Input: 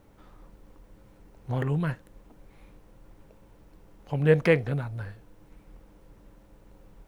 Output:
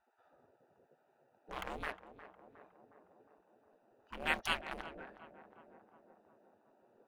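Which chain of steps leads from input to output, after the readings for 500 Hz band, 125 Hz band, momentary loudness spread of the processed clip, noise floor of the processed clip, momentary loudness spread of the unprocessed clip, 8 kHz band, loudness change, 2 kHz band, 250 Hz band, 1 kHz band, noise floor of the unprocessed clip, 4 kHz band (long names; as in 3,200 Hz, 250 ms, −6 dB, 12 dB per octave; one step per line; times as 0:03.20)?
−21.5 dB, −31.0 dB, 22 LU, −74 dBFS, 17 LU, can't be measured, −14.0 dB, −5.5 dB, −20.5 dB, −1.5 dB, −56 dBFS, +2.5 dB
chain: adaptive Wiener filter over 41 samples
gate on every frequency bin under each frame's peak −25 dB weak
on a send: tape delay 361 ms, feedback 80%, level −11 dB, low-pass 1,100 Hz
on the sum: level +4 dB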